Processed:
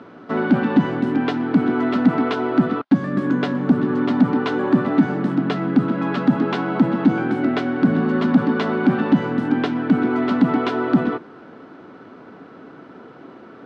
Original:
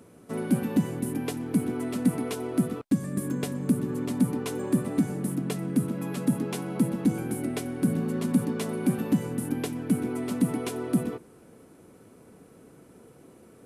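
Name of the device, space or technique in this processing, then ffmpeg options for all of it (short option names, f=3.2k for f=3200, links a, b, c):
overdrive pedal into a guitar cabinet: -filter_complex "[0:a]asplit=2[a][b];[b]highpass=f=720:p=1,volume=18dB,asoftclip=type=tanh:threshold=-11dB[c];[a][c]amix=inputs=2:normalize=0,lowpass=f=1.9k:p=1,volume=-6dB,highpass=83,equalizer=f=270:t=q:w=4:g=4,equalizer=f=490:t=q:w=4:g=-6,equalizer=f=2.4k:t=q:w=4:g=-5,lowpass=f=4.3k:w=0.5412,lowpass=f=4.3k:w=1.3066,equalizer=f=1.4k:t=o:w=0.3:g=5,volume=5.5dB"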